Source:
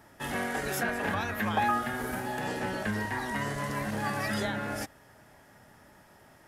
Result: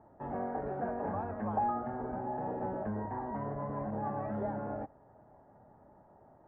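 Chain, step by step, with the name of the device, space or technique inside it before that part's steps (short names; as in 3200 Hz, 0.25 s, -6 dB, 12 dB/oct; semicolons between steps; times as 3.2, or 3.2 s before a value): overdriven synthesiser ladder filter (soft clip -23 dBFS, distortion -18 dB; ladder low-pass 1000 Hz, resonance 35%); gain +4 dB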